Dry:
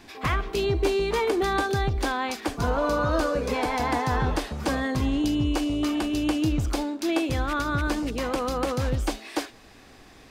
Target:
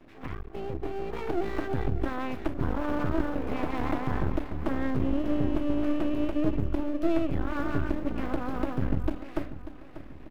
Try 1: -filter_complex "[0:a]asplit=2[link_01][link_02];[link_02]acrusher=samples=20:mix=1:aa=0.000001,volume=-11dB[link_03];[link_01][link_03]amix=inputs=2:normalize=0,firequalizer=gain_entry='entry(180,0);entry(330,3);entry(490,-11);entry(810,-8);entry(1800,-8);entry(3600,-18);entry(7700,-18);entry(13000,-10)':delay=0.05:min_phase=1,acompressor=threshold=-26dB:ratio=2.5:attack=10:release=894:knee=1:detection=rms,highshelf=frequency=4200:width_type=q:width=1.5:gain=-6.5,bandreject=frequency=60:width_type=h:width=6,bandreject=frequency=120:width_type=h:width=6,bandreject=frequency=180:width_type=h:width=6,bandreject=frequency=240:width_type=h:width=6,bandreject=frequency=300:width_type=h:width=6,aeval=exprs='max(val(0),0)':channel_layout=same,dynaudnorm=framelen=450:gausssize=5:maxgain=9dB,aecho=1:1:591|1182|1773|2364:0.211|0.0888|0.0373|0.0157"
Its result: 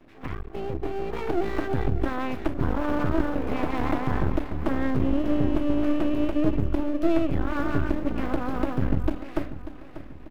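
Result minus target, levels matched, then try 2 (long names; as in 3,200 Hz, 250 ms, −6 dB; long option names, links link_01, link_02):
downward compressor: peak gain reduction −3.5 dB
-filter_complex "[0:a]asplit=2[link_01][link_02];[link_02]acrusher=samples=20:mix=1:aa=0.000001,volume=-11dB[link_03];[link_01][link_03]amix=inputs=2:normalize=0,firequalizer=gain_entry='entry(180,0);entry(330,3);entry(490,-11);entry(810,-8);entry(1800,-8);entry(3600,-18);entry(7700,-18);entry(13000,-10)':delay=0.05:min_phase=1,acompressor=threshold=-32dB:ratio=2.5:attack=10:release=894:knee=1:detection=rms,highshelf=frequency=4200:width_type=q:width=1.5:gain=-6.5,bandreject=frequency=60:width_type=h:width=6,bandreject=frequency=120:width_type=h:width=6,bandreject=frequency=180:width_type=h:width=6,bandreject=frequency=240:width_type=h:width=6,bandreject=frequency=300:width_type=h:width=6,aeval=exprs='max(val(0),0)':channel_layout=same,dynaudnorm=framelen=450:gausssize=5:maxgain=9dB,aecho=1:1:591|1182|1773|2364:0.211|0.0888|0.0373|0.0157"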